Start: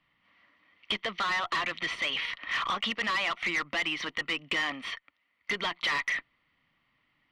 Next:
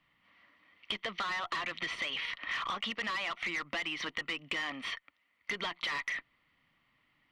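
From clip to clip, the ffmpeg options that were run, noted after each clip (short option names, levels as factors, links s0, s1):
-af "acompressor=threshold=0.0224:ratio=6"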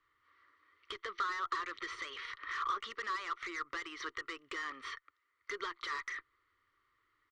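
-af "firequalizer=gain_entry='entry(110,0);entry(160,-26);entry(380,8);entry(690,-16);entry(1200,9);entry(2600,-10);entry(3900,-1);entry(6900,2);entry(11000,-8)':delay=0.05:min_phase=1,volume=0.596"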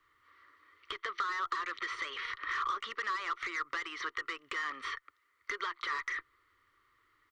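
-filter_complex "[0:a]acrossover=split=560|3200[s0][s1][s2];[s0]acompressor=threshold=0.001:ratio=4[s3];[s1]acompressor=threshold=0.0126:ratio=4[s4];[s2]acompressor=threshold=0.00141:ratio=4[s5];[s3][s4][s5]amix=inputs=3:normalize=0,volume=2"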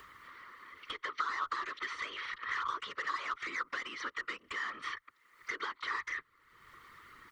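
-af "afftfilt=real='hypot(re,im)*cos(2*PI*random(0))':imag='hypot(re,im)*sin(2*PI*random(1))':win_size=512:overlap=0.75,acompressor=mode=upward:threshold=0.00562:ratio=2.5,volume=1.68"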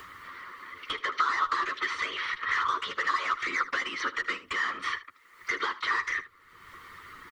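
-af "aecho=1:1:11|77:0.422|0.168,volume=2.37"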